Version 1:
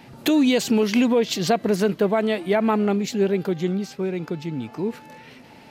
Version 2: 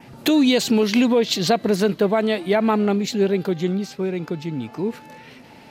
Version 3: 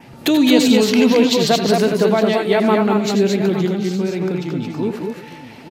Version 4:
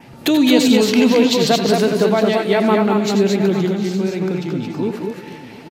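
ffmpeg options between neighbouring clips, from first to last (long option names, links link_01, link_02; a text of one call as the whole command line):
ffmpeg -i in.wav -af "adynamicequalizer=threshold=0.00447:dfrequency=4000:dqfactor=4:tfrequency=4000:tqfactor=4:attack=5:release=100:ratio=0.375:range=3:mode=boostabove:tftype=bell,volume=1.5dB" out.wav
ffmpeg -i in.wav -af "aecho=1:1:83|95|208|224|370|861:0.282|0.266|0.335|0.631|0.106|0.188,volume=2dB" out.wav
ffmpeg -i in.wav -af "aecho=1:1:239|478|717|956|1195:0.15|0.0853|0.0486|0.0277|0.0158" out.wav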